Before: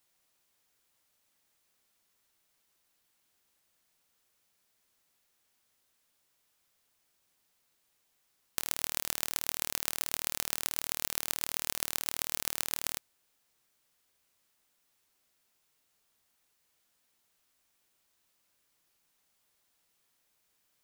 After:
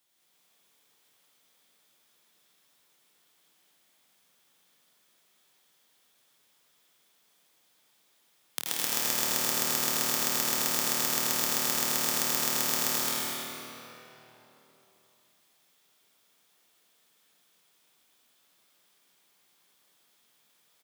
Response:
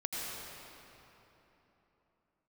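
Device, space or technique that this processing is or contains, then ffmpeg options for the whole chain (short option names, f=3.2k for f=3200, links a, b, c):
stadium PA: -filter_complex "[0:a]highpass=f=130:w=0.5412,highpass=f=130:w=1.3066,equalizer=f=3.4k:t=o:w=0.21:g=6.5,aecho=1:1:215.7|259.5:0.708|0.501[a];[1:a]atrim=start_sample=2205[b];[a][b]afir=irnorm=-1:irlink=0,volume=2dB"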